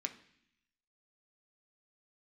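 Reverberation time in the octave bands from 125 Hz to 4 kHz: 0.95 s, 0.95 s, 0.65 s, 0.65 s, 0.95 s, 0.95 s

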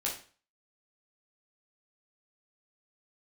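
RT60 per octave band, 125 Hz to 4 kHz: 0.45 s, 0.40 s, 0.40 s, 0.40 s, 0.40 s, 0.40 s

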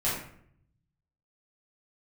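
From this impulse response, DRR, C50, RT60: -9.0 dB, 2.5 dB, 0.65 s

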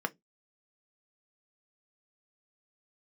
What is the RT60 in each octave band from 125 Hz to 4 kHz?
0.30 s, 0.25 s, 0.20 s, 0.10 s, 0.15 s, 0.15 s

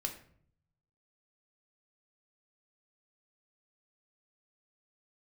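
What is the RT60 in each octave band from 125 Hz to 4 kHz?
1.3 s, 0.80 s, 0.65 s, 0.55 s, 0.50 s, 0.40 s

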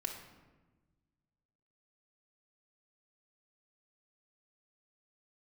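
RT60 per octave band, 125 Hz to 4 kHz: 2.1 s, 1.8 s, 1.3 s, 1.1 s, 1.0 s, 0.75 s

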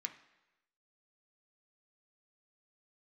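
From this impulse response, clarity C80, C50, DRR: 14.5 dB, 12.0 dB, 4.5 dB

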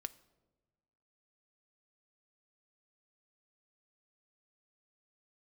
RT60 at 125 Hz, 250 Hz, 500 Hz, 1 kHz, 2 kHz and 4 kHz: 1.6 s, 1.6 s, 1.4 s, 1.1 s, 0.75 s, 0.65 s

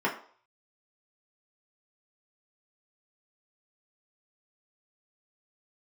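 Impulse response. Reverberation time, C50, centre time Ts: 0.50 s, 10.0 dB, 20 ms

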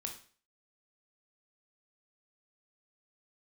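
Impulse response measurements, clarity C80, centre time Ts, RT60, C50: 13.5 dB, 18 ms, 0.45 s, 8.5 dB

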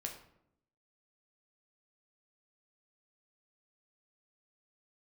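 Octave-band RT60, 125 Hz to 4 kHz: 0.95 s, 1.0 s, 0.80 s, 0.70 s, 0.60 s, 0.45 s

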